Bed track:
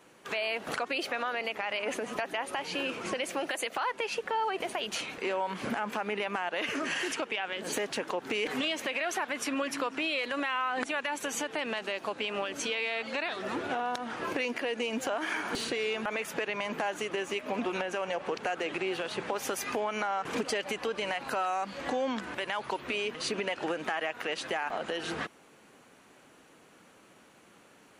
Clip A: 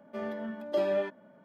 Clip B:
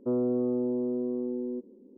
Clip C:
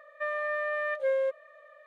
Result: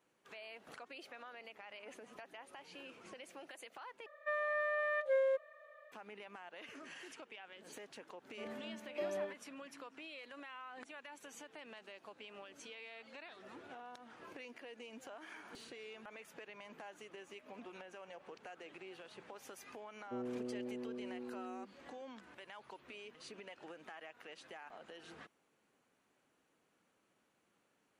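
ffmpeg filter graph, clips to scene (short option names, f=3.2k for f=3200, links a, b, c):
-filter_complex "[0:a]volume=-19.5dB,asplit=2[a][b];[a]atrim=end=4.064[c];[3:a]atrim=end=1.86,asetpts=PTS-STARTPTS,volume=-5dB[d];[b]atrim=start=5.916[e];[1:a]atrim=end=1.44,asetpts=PTS-STARTPTS,volume=-11.5dB,afade=t=in:d=0.004:c=hsin,afade=t=out:st=1.436:d=0.004:c=hsin,adelay=8240[f];[2:a]atrim=end=1.97,asetpts=PTS-STARTPTS,volume=-15dB,afade=t=in:d=0.004:c=hsin,afade=t=out:st=1.966:d=0.004:c=hsin,adelay=20050[g];[c][d]acrossfade=d=0.004:c1=hsin:c2=hsin[h];[h][e]acrossfade=d=0.004:c1=hsin:c2=hsin[i];[i][f][g]amix=inputs=3:normalize=0"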